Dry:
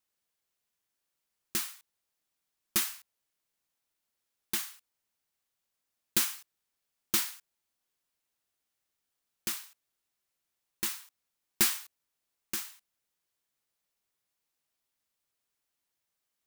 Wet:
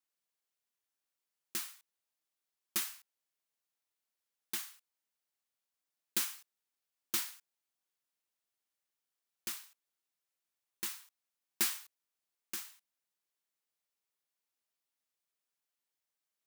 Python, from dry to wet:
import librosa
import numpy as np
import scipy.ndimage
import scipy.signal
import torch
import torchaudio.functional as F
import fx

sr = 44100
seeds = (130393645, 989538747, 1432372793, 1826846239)

y = fx.highpass(x, sr, hz=260.0, slope=6)
y = y * 10.0 ** (-6.0 / 20.0)